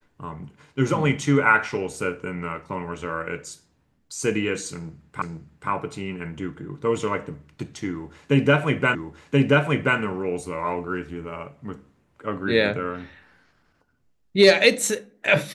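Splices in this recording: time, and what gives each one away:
0:05.22: the same again, the last 0.48 s
0:08.95: the same again, the last 1.03 s

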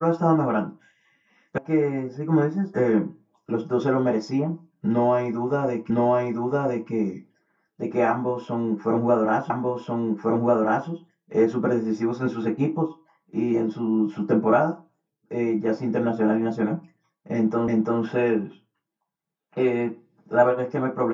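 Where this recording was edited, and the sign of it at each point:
0:01.58: cut off before it has died away
0:05.90: the same again, the last 1.01 s
0:09.50: the same again, the last 1.39 s
0:17.68: the same again, the last 0.34 s

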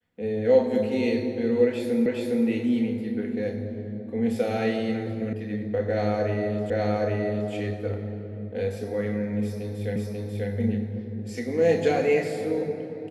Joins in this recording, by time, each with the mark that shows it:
0:02.06: the same again, the last 0.41 s
0:05.33: cut off before it has died away
0:06.70: the same again, the last 0.82 s
0:09.96: the same again, the last 0.54 s

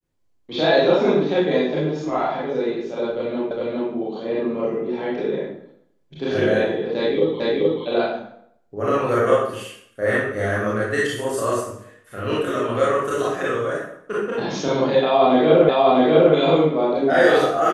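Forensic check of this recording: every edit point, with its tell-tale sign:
0:03.51: the same again, the last 0.41 s
0:07.40: the same again, the last 0.43 s
0:15.69: the same again, the last 0.65 s

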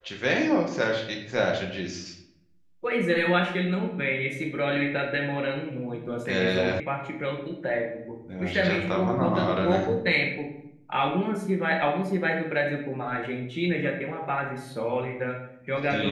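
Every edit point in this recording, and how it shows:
0:06.80: cut off before it has died away

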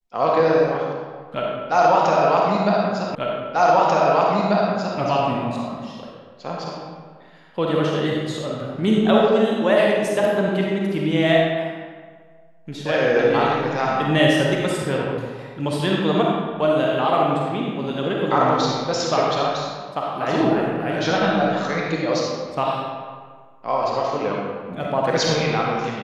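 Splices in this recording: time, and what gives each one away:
0:03.15: the same again, the last 1.84 s

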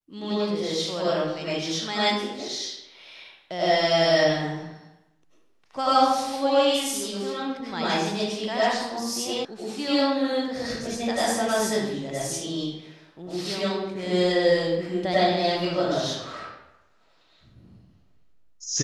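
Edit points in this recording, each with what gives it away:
0:09.45: cut off before it has died away

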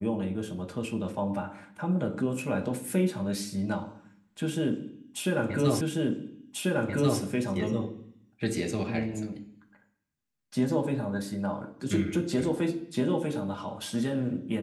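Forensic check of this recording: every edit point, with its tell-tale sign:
0:05.81: the same again, the last 1.39 s

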